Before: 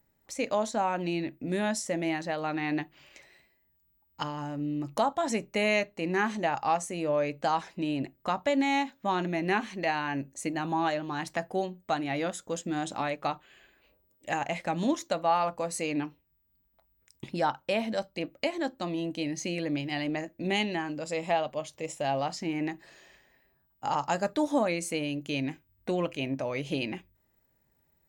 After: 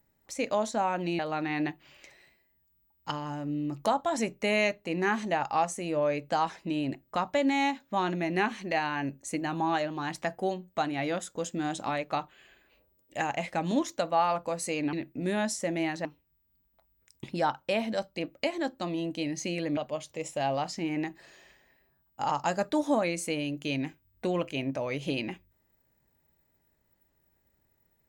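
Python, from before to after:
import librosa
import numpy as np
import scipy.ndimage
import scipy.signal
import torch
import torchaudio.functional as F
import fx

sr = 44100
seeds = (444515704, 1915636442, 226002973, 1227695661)

y = fx.edit(x, sr, fx.move(start_s=1.19, length_s=1.12, to_s=16.05),
    fx.cut(start_s=19.77, length_s=1.64), tone=tone)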